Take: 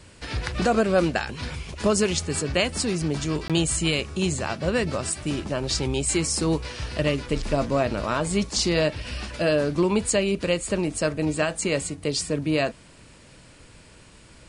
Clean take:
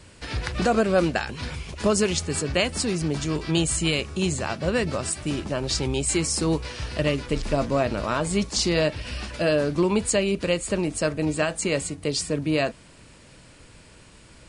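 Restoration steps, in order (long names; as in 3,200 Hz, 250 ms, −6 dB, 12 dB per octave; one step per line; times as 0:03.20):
repair the gap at 0:03.48, 17 ms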